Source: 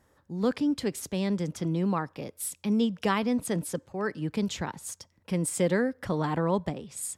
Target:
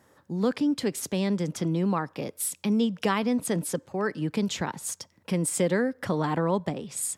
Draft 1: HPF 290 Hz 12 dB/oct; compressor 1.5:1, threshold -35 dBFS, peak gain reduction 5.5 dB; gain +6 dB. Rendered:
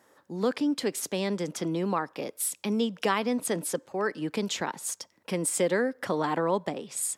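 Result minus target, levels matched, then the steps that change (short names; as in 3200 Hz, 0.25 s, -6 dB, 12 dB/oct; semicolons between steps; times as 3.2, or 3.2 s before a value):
125 Hz band -5.5 dB
change: HPF 120 Hz 12 dB/oct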